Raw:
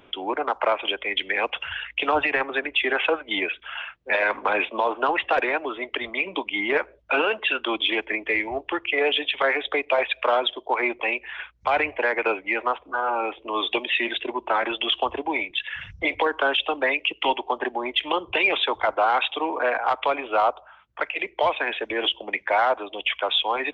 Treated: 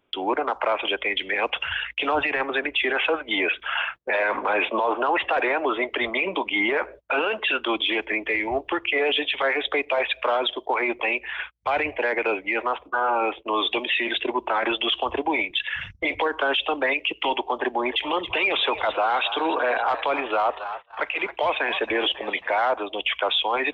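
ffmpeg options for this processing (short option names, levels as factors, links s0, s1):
-filter_complex "[0:a]asettb=1/sr,asplit=3[s0][s1][s2];[s0]atrim=end=3.324[s3];[s1]atrim=start=3.32:end=7.2,asetpts=PTS-STARTPTS,afade=t=in:d=0.004:c=qsin,afade=t=out:st=3.876:d=0.004:c=qsin,equalizer=f=840:w=0.4:g=6[s4];[s2]atrim=start=7.196[s5];[s3][s4]acrossfade=d=0.004:c1=hsin:c2=qsin[s6];[s6][s5]acrossfade=d=0.004:c1=qsin:c2=hsin,asettb=1/sr,asplit=3[s7][s8][s9];[s7]atrim=end=11.754[s10];[s8]atrim=start=11.75:end=12.58,asetpts=PTS-STARTPTS,afade=t=in:d=0.004:c=qsin,afade=t=out:st=0.826:d=0.004:c=qsin,equalizer=f=1200:w=1.5:g=-4.5[s11];[s9]atrim=start=12.576[s12];[s10][s11]acrossfade=d=0.004:c1=hsin:c2=qsin[s13];[s13][s12]acrossfade=d=0.004:c1=qsin:c2=hsin,asettb=1/sr,asplit=3[s14][s15][s16];[s14]atrim=end=17.324[s17];[s15]atrim=start=17.32:end=22.61,asetpts=PTS-STARTPTS,afade=t=in:d=0.004:c=qsin,afade=t=out:st=5.286:d=0.004:c=qsin,asplit=6[s18][s19][s20][s21][s22][s23];[s19]adelay=272,afreqshift=77,volume=0.15[s24];[s20]adelay=544,afreqshift=154,volume=0.0841[s25];[s21]adelay=816,afreqshift=231,volume=0.0468[s26];[s22]adelay=1088,afreqshift=308,volume=0.0263[s27];[s23]adelay=1360,afreqshift=385,volume=0.0148[s28];[s18][s24][s25][s26][s27][s28]amix=inputs=6:normalize=0,atrim=end_sample=233289[s29];[s16]atrim=start=22.606[s30];[s17][s29]acrossfade=d=0.004:c1=hsin:c2=qsin[s31];[s31][s30]acrossfade=d=0.004:c1=qsin:c2=hsin,agate=range=0.0891:threshold=0.0112:ratio=16:detection=peak,alimiter=limit=0.119:level=0:latency=1:release=19,volume=1.58"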